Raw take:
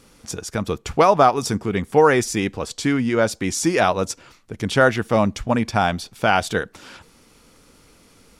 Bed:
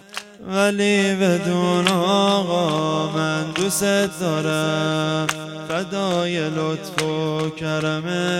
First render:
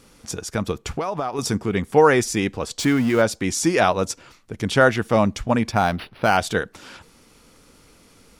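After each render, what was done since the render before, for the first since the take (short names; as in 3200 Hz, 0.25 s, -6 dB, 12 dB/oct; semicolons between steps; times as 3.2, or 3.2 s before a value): 0.71–1.39 compressor 10:1, threshold -21 dBFS; 2.79–3.22 zero-crossing step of -29 dBFS; 5.72–6.37 decimation joined by straight lines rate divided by 6×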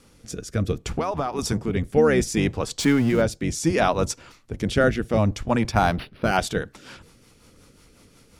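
octaver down 1 oct, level -2 dB; rotary speaker horn 0.65 Hz, later 5.5 Hz, at 5.95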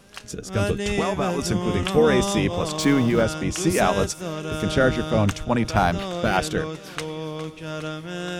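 add bed -9 dB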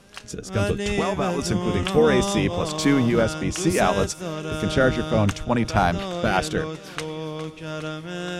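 Bessel low-pass 12000 Hz, order 2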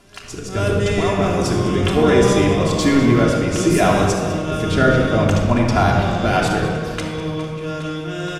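echo 0.201 s -15.5 dB; shoebox room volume 3500 m³, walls mixed, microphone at 3.1 m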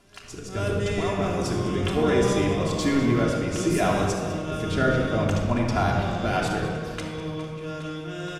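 gain -7.5 dB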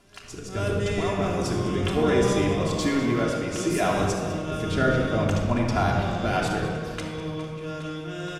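2.87–3.97 low shelf 190 Hz -6.5 dB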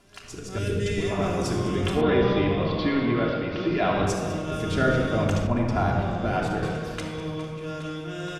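0.58–1.11 band shelf 900 Hz -13.5 dB 1.3 oct; 2.01–4.07 steep low-pass 4400 Hz 48 dB/oct; 5.47–6.63 high shelf 2300 Hz -9.5 dB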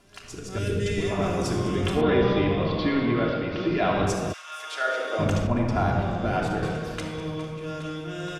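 4.32–5.18 HPF 1400 Hz -> 390 Hz 24 dB/oct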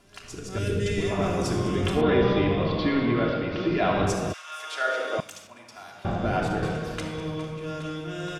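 5.2–6.05 differentiator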